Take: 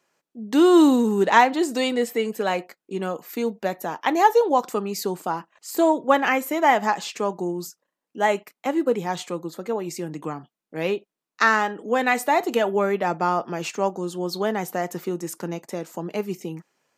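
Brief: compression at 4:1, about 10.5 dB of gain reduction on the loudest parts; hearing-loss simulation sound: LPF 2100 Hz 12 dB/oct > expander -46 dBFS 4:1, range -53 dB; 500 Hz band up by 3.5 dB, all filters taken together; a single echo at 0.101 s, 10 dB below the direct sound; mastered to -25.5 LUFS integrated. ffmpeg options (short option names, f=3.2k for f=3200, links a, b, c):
-af "equalizer=f=500:t=o:g=4.5,acompressor=threshold=-22dB:ratio=4,lowpass=2.1k,aecho=1:1:101:0.316,agate=range=-53dB:threshold=-46dB:ratio=4,volume=2dB"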